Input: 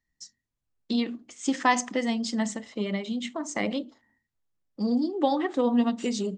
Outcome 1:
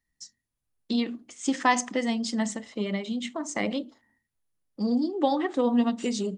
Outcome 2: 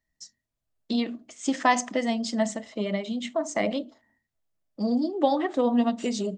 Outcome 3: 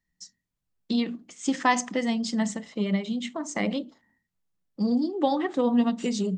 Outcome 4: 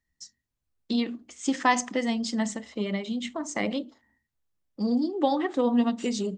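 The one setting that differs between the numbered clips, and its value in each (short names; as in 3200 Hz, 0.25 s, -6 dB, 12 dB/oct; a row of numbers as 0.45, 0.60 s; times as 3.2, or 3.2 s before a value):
bell, frequency: 10000, 640, 180, 68 Hz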